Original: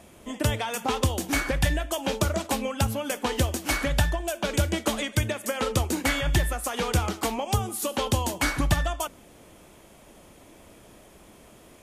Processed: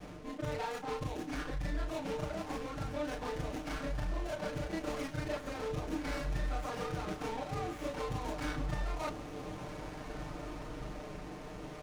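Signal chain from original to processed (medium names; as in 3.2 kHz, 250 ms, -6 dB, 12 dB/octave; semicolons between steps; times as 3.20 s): short-time spectra conjugated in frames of 81 ms; reverse; compression 10:1, threshold -41 dBFS, peak gain reduction 21 dB; reverse; low-pass 6.4 kHz 24 dB/octave; bass shelf 110 Hz +5.5 dB; in parallel at -1 dB: peak limiter -39.5 dBFS, peak gain reduction 10.5 dB; on the sum: vibrato 0.5 Hz 14 cents; comb 6.6 ms, depth 78%; echo that smears into a reverb 1553 ms, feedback 40%, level -9 dB; sliding maximum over 9 samples; trim +1 dB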